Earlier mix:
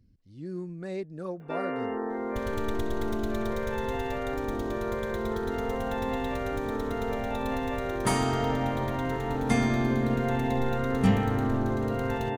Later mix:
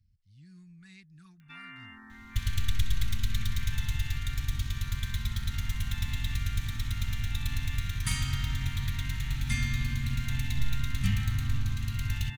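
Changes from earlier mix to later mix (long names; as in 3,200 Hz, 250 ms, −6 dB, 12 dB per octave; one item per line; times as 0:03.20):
speech −4.0 dB
second sound +8.5 dB
master: add Chebyshev band-stop filter 110–2,300 Hz, order 2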